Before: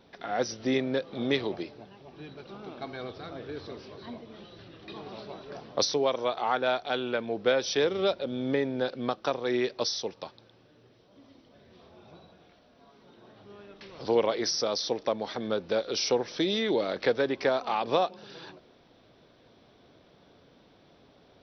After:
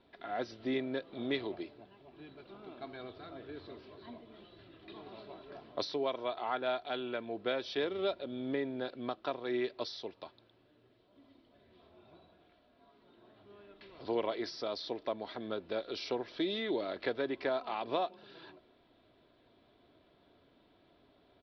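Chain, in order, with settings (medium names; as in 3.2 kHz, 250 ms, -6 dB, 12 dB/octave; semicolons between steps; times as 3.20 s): steep low-pass 4.4 kHz 36 dB/octave; comb 3 ms, depth 38%; trim -8 dB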